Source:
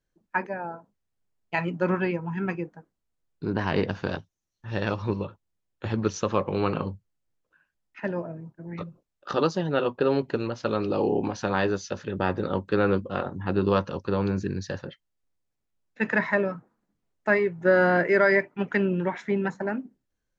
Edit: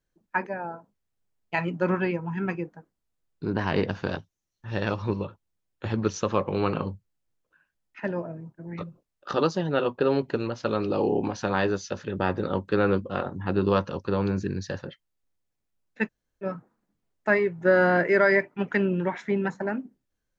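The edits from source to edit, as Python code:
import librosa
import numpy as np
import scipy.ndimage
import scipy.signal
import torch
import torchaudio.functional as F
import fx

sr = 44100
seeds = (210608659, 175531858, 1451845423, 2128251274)

y = fx.edit(x, sr, fx.room_tone_fill(start_s=16.06, length_s=0.38, crossfade_s=0.06), tone=tone)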